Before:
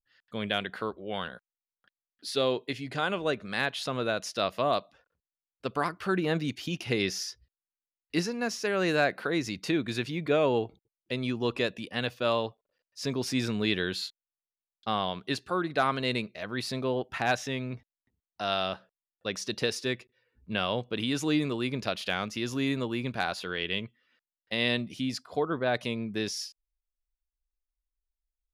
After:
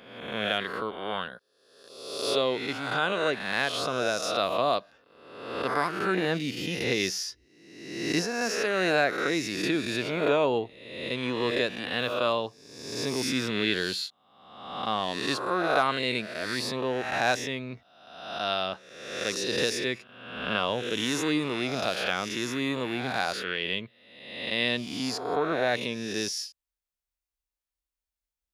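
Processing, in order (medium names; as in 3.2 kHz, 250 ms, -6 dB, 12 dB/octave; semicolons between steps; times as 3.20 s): reverse spectral sustain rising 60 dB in 1.05 s; high-pass 56 Hz; peaking EQ 95 Hz -4.5 dB 2.2 oct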